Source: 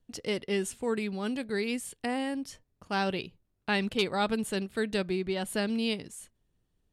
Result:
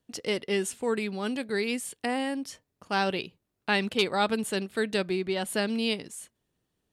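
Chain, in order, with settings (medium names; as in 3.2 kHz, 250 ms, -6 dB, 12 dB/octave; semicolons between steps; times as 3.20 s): high-pass 220 Hz 6 dB/octave; trim +3.5 dB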